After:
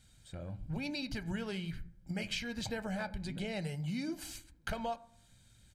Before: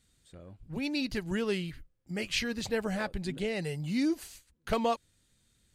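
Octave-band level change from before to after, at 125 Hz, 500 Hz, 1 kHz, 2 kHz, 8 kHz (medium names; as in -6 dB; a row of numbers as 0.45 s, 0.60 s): -1.0 dB, -9.0 dB, -6.5 dB, -5.0 dB, -4.5 dB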